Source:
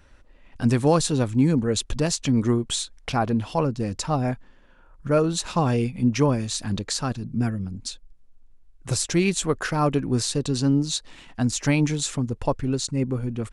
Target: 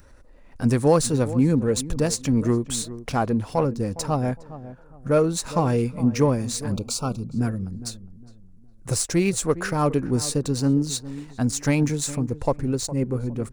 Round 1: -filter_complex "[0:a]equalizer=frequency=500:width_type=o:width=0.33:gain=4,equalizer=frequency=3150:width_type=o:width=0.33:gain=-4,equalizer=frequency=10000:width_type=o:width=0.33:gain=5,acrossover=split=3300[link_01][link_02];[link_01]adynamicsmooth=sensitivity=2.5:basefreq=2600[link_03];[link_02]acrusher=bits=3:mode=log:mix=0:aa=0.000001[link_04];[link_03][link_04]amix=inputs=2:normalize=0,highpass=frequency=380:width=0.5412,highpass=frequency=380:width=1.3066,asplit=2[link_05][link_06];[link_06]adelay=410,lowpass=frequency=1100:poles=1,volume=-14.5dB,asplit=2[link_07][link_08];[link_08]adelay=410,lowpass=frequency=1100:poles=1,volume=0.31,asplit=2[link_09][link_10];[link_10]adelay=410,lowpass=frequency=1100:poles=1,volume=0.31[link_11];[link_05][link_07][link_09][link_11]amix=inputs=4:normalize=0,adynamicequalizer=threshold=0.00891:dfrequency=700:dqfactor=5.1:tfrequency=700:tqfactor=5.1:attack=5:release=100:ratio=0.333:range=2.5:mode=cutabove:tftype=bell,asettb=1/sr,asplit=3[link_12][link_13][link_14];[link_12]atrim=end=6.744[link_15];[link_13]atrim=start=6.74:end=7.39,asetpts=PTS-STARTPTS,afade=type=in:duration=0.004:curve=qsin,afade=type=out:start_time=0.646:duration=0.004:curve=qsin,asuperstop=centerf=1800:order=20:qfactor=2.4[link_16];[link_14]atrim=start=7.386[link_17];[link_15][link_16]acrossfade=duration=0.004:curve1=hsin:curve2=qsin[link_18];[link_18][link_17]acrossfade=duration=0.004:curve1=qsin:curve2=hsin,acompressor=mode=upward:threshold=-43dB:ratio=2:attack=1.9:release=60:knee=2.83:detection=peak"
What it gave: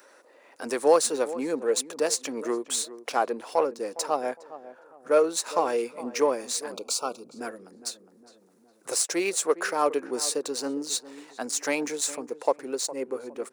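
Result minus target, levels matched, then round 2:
500 Hz band +3.0 dB
-filter_complex "[0:a]equalizer=frequency=500:width_type=o:width=0.33:gain=4,equalizer=frequency=3150:width_type=o:width=0.33:gain=-4,equalizer=frequency=10000:width_type=o:width=0.33:gain=5,acrossover=split=3300[link_01][link_02];[link_01]adynamicsmooth=sensitivity=2.5:basefreq=2600[link_03];[link_02]acrusher=bits=3:mode=log:mix=0:aa=0.000001[link_04];[link_03][link_04]amix=inputs=2:normalize=0,asplit=2[link_05][link_06];[link_06]adelay=410,lowpass=frequency=1100:poles=1,volume=-14.5dB,asplit=2[link_07][link_08];[link_08]adelay=410,lowpass=frequency=1100:poles=1,volume=0.31,asplit=2[link_09][link_10];[link_10]adelay=410,lowpass=frequency=1100:poles=1,volume=0.31[link_11];[link_05][link_07][link_09][link_11]amix=inputs=4:normalize=0,adynamicequalizer=threshold=0.00891:dfrequency=700:dqfactor=5.1:tfrequency=700:tqfactor=5.1:attack=5:release=100:ratio=0.333:range=2.5:mode=cutabove:tftype=bell,asettb=1/sr,asplit=3[link_12][link_13][link_14];[link_12]atrim=end=6.744[link_15];[link_13]atrim=start=6.74:end=7.39,asetpts=PTS-STARTPTS,afade=type=in:duration=0.004:curve=qsin,afade=type=out:start_time=0.646:duration=0.004:curve=qsin,asuperstop=centerf=1800:order=20:qfactor=2.4[link_16];[link_14]atrim=start=7.386[link_17];[link_15][link_16]acrossfade=duration=0.004:curve1=hsin:curve2=qsin[link_18];[link_18][link_17]acrossfade=duration=0.004:curve1=qsin:curve2=hsin,acompressor=mode=upward:threshold=-43dB:ratio=2:attack=1.9:release=60:knee=2.83:detection=peak"

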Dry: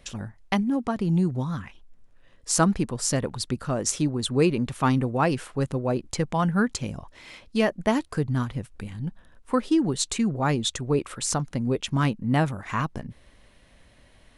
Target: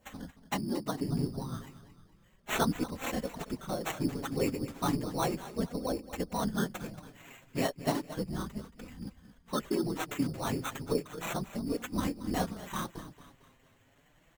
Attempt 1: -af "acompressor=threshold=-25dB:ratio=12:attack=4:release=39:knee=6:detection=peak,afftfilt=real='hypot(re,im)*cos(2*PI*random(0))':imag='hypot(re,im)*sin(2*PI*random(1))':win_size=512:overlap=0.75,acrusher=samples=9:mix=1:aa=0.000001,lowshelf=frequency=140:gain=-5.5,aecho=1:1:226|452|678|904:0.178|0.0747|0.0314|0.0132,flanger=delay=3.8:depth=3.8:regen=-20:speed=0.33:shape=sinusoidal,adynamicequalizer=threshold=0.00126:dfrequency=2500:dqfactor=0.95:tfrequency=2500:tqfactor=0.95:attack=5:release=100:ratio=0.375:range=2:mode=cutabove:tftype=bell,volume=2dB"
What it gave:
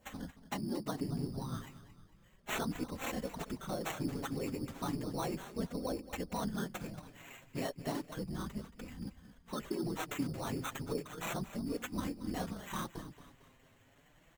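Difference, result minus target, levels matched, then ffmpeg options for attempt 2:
downward compressor: peak gain reduction +10.5 dB
-af "afftfilt=real='hypot(re,im)*cos(2*PI*random(0))':imag='hypot(re,im)*sin(2*PI*random(1))':win_size=512:overlap=0.75,acrusher=samples=9:mix=1:aa=0.000001,lowshelf=frequency=140:gain=-5.5,aecho=1:1:226|452|678|904:0.178|0.0747|0.0314|0.0132,flanger=delay=3.8:depth=3.8:regen=-20:speed=0.33:shape=sinusoidal,adynamicequalizer=threshold=0.00126:dfrequency=2500:dqfactor=0.95:tfrequency=2500:tqfactor=0.95:attack=5:release=100:ratio=0.375:range=2:mode=cutabove:tftype=bell,volume=2dB"

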